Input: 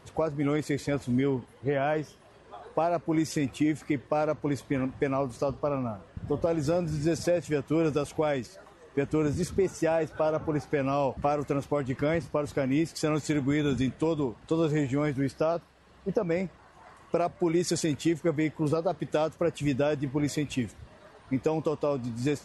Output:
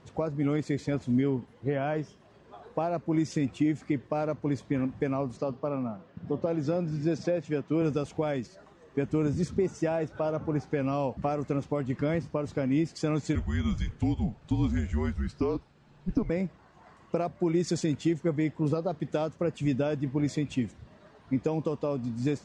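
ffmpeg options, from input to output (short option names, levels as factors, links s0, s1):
-filter_complex "[0:a]asettb=1/sr,asplit=3[s0][s1][s2];[s0]atrim=end=5.374[s3];[s1]atrim=start=5.37:end=7.82,asetpts=PTS-STARTPTS,afade=t=in:d=0.004:c=qsin,afade=t=out:st=2.446:d=0.004:c=qsin,highpass=140,lowpass=5300[s4];[s2]atrim=start=7.816[s5];[s3][s4]acrossfade=d=0.004:c1=hsin:c2=qsin[s6];[s6][s5]acrossfade=d=0.004:c1=qsin:c2=hsin,asettb=1/sr,asplit=3[s7][s8][s9];[s7]atrim=end=13.354[s10];[s8]atrim=start=13.35:end=16.3,asetpts=PTS-STARTPTS,afade=t=in:d=0.004:c=qsin,afade=t=out:st=2.946:d=0.004:c=qsin,afreqshift=-210[s11];[s9]atrim=start=16.296[s12];[s10][s11]acrossfade=d=0.004:c1=hsin:c2=qsin[s13];[s13][s12]acrossfade=d=0.004:c1=qsin:c2=hsin,lowpass=f=7700:w=0.5412,lowpass=f=7700:w=1.3066,equalizer=f=190:t=o:w=1.7:g=7,volume=0.596"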